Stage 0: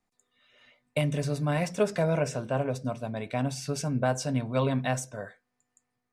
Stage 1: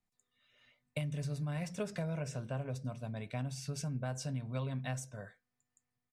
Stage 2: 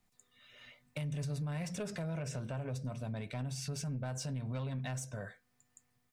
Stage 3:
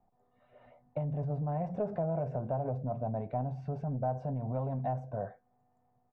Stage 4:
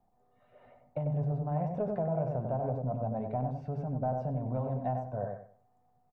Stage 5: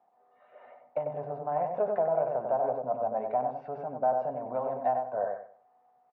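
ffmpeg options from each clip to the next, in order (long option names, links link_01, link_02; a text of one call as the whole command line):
ffmpeg -i in.wav -af "firequalizer=gain_entry='entry(140,0);entry(290,-10);entry(850,-15)':delay=0.05:min_phase=1,acompressor=threshold=-32dB:ratio=6,tiltshelf=frequency=690:gain=-5.5,volume=2.5dB" out.wav
ffmpeg -i in.wav -af "asoftclip=type=tanh:threshold=-32dB,alimiter=level_in=19.5dB:limit=-24dB:level=0:latency=1:release=294,volume=-19.5dB,volume=11dB" out.wav
ffmpeg -i in.wav -af "lowpass=frequency=750:width_type=q:width=4.1,volume=2.5dB" out.wav
ffmpeg -i in.wav -filter_complex "[0:a]asplit=2[link_01][link_02];[link_02]adelay=95,lowpass=frequency=1600:poles=1,volume=-4dB,asplit=2[link_03][link_04];[link_04]adelay=95,lowpass=frequency=1600:poles=1,volume=0.28,asplit=2[link_05][link_06];[link_06]adelay=95,lowpass=frequency=1600:poles=1,volume=0.28,asplit=2[link_07][link_08];[link_08]adelay=95,lowpass=frequency=1600:poles=1,volume=0.28[link_09];[link_01][link_03][link_05][link_07][link_09]amix=inputs=5:normalize=0" out.wav
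ffmpeg -i in.wav -af "highpass=590,lowpass=2100,volume=9dB" out.wav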